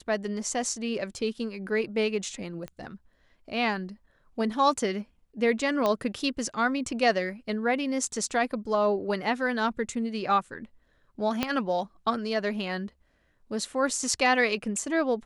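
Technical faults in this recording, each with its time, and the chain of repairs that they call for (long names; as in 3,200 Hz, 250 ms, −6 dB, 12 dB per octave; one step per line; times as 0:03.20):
0:02.68: click −24 dBFS
0:05.86: click −13 dBFS
0:11.43: click −10 dBFS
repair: click removal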